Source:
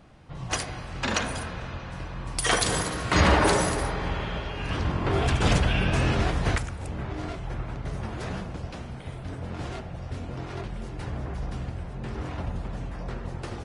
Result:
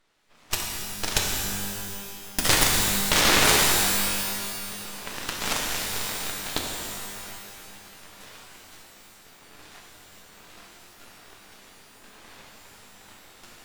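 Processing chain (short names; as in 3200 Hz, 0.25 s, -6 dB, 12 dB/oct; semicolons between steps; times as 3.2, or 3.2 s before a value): HPF 1100 Hz 6 dB/oct; added harmonics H 7 -15 dB, 8 -21 dB, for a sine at -11.5 dBFS; full-wave rectifier; shimmer reverb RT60 2 s, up +12 st, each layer -2 dB, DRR -0.5 dB; gain +6.5 dB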